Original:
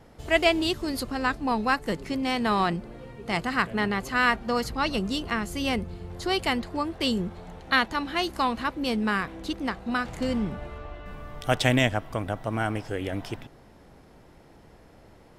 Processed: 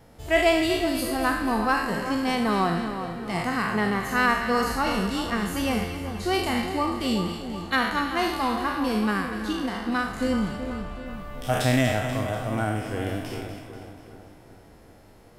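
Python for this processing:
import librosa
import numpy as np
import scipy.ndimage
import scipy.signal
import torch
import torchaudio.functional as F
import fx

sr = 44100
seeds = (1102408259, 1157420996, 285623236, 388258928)

p1 = fx.spec_trails(x, sr, decay_s=0.65)
p2 = fx.high_shelf(p1, sr, hz=9400.0, db=10.5)
p3 = fx.hpss(p2, sr, part='percussive', gain_db=-16)
p4 = np.clip(10.0 ** (21.5 / 20.0) * p3, -1.0, 1.0) / 10.0 ** (21.5 / 20.0)
p5 = p3 + F.gain(torch.from_numpy(p4), -11.5).numpy()
p6 = fx.dynamic_eq(p5, sr, hz=3500.0, q=0.95, threshold_db=-39.0, ratio=4.0, max_db=-4)
y = p6 + fx.echo_split(p6, sr, split_hz=1500.0, low_ms=379, high_ms=243, feedback_pct=52, wet_db=-9.0, dry=0)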